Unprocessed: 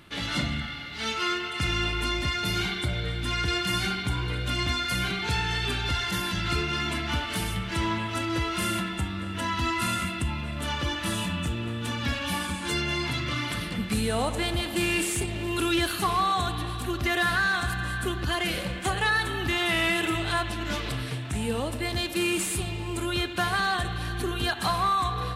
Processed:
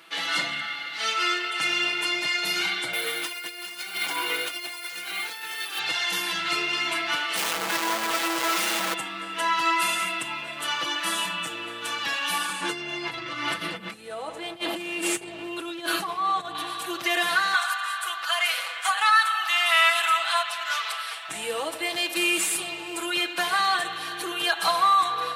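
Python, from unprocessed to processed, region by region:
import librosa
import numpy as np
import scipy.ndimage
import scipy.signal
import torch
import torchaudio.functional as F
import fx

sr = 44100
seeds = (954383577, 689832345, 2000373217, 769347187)

y = fx.chain(x, sr, fx.highpass(hz=260.0, slope=12),
    fx.over_compress(threshold_db=-34.0, ratio=-0.5),
    fx.sample_hold(seeds[0], rate_hz=14000.0, jitter_pct=0), at=(2.93, 5.79))
y = fx.chain(y, sr, fx.peak_eq(hz=240.0, db=13.5, octaves=0.23),
    fx.schmitt(flips_db=-39.0), at=(7.36, 8.94))
y = fx.chain(y, sr, fx.tilt_eq(slope=-2.5),
    fx.over_compress(threshold_db=-29.0, ratio=-1.0), at=(12.61, 16.55))
y = fx.chain(y, sr, fx.highpass(hz=720.0, slope=24),
    fx.peak_eq(hz=1300.0, db=6.5, octaves=0.29), at=(17.54, 21.29))
y = scipy.signal.sosfilt(scipy.signal.butter(2, 580.0, 'highpass', fs=sr, output='sos'), y)
y = y + 0.77 * np.pad(y, (int(6.1 * sr / 1000.0), 0))[:len(y)]
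y = F.gain(torch.from_numpy(y), 2.5).numpy()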